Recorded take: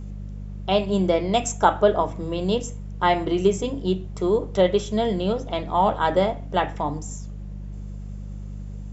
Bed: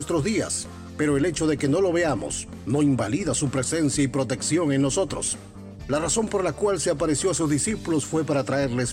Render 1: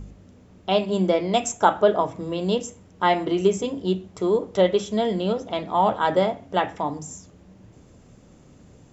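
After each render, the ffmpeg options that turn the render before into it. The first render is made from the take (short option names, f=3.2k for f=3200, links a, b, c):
-af "bandreject=f=50:t=h:w=4,bandreject=f=100:t=h:w=4,bandreject=f=150:t=h:w=4,bandreject=f=200:t=h:w=4"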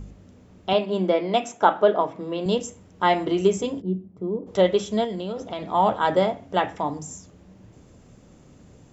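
-filter_complex "[0:a]asettb=1/sr,asplit=3[a][b][c];[a]atrim=end=0.734[d];[b]atrim=start=0.73:end=2.46,asetpts=PTS-STARTPTS,afade=t=in:d=0.004:c=qsin,afade=t=out:st=1.726:d=0.004:c=qsin,highpass=200,lowpass=4k[e];[c]atrim=start=2.456[f];[d][e]acrossfade=d=0.004:c1=hsin:c2=qsin[g];[g][f]acrossfade=d=0.004:c1=qsin:c2=hsin,asplit=3[h][i][j];[h]afade=t=out:st=3.8:d=0.02[k];[i]bandpass=f=190:t=q:w=1.3,afade=t=in:st=3.8:d=0.02,afade=t=out:st=4.46:d=0.02[l];[j]afade=t=in:st=4.46:d=0.02[m];[k][l][m]amix=inputs=3:normalize=0,asettb=1/sr,asplit=3[n][o][p];[n]atrim=end=5.044[q];[o]atrim=start=5.04:end=5.66,asetpts=PTS-STARTPTS,afade=t=in:d=0.004:c=qsin,afade=t=out:st=0.616:d=0.004:c=qsin,acompressor=threshold=-26dB:ratio=6:attack=3.2:release=140:knee=1:detection=peak[r];[p]atrim=start=5.656[s];[q][r]acrossfade=d=0.004:c1=hsin:c2=qsin[t];[t][s]acrossfade=d=0.004:c1=qsin:c2=hsin"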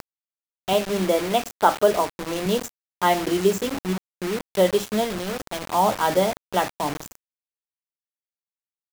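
-af "acrusher=bits=4:mix=0:aa=0.000001"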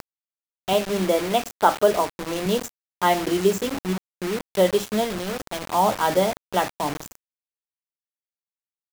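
-af anull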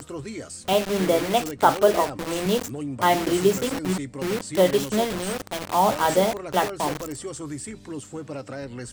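-filter_complex "[1:a]volume=-11dB[a];[0:a][a]amix=inputs=2:normalize=0"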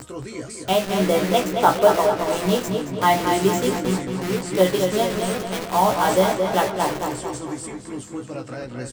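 -filter_complex "[0:a]asplit=2[a][b];[b]adelay=16,volume=-4.5dB[c];[a][c]amix=inputs=2:normalize=0,asplit=2[d][e];[e]adelay=223,lowpass=f=4.6k:p=1,volume=-5.5dB,asplit=2[f][g];[g]adelay=223,lowpass=f=4.6k:p=1,volume=0.53,asplit=2[h][i];[i]adelay=223,lowpass=f=4.6k:p=1,volume=0.53,asplit=2[j][k];[k]adelay=223,lowpass=f=4.6k:p=1,volume=0.53,asplit=2[l][m];[m]adelay=223,lowpass=f=4.6k:p=1,volume=0.53,asplit=2[n][o];[o]adelay=223,lowpass=f=4.6k:p=1,volume=0.53,asplit=2[p][q];[q]adelay=223,lowpass=f=4.6k:p=1,volume=0.53[r];[f][h][j][l][n][p][r]amix=inputs=7:normalize=0[s];[d][s]amix=inputs=2:normalize=0"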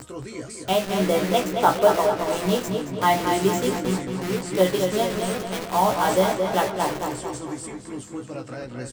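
-af "volume=-2dB"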